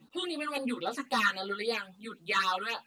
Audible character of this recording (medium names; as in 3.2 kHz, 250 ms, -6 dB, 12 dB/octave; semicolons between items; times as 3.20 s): phasing stages 8, 3.7 Hz, lowest notch 670–2400 Hz; a quantiser's noise floor 12-bit, dither none; a shimmering, thickened sound